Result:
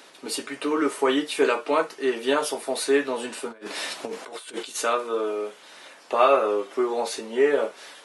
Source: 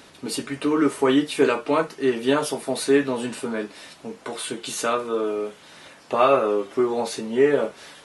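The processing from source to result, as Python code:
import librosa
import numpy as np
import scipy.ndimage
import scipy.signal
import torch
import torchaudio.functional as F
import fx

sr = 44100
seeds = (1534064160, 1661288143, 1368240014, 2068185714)

y = scipy.signal.sosfilt(scipy.signal.butter(2, 370.0, 'highpass', fs=sr, output='sos'), x)
y = fx.over_compress(y, sr, threshold_db=-39.0, ratio=-0.5, at=(3.48, 4.74), fade=0.02)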